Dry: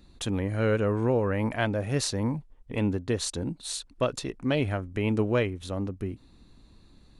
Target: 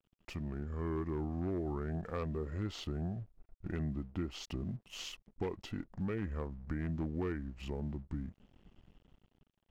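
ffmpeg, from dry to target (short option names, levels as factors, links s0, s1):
-af "dynaudnorm=f=130:g=9:m=2,aeval=exprs='0.266*(abs(mod(val(0)/0.266+3,4)-2)-1)':c=same,aemphasis=mode=reproduction:type=75kf,aeval=exprs='sgn(val(0))*max(abs(val(0))-0.00316,0)':c=same,asetrate=32667,aresample=44100,acompressor=threshold=0.0224:ratio=2.5,volume=0.501"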